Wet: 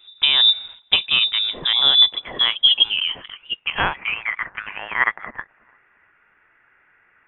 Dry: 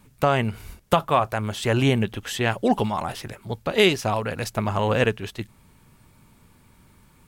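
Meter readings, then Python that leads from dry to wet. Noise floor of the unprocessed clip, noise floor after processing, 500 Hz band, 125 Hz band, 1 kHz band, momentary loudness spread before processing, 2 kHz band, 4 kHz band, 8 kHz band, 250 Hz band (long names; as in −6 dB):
−57 dBFS, −60 dBFS, −16.0 dB, −18.5 dB, −4.5 dB, 14 LU, +5.5 dB, +17.5 dB, below −40 dB, −17.5 dB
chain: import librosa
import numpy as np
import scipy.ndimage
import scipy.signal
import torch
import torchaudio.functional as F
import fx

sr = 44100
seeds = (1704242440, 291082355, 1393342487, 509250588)

y = fx.echo_wet_highpass(x, sr, ms=335, feedback_pct=33, hz=2900.0, wet_db=-24)
y = fx.filter_sweep_highpass(y, sr, from_hz=110.0, to_hz=1900.0, start_s=1.23, end_s=4.45, q=5.0)
y = fx.freq_invert(y, sr, carrier_hz=3700)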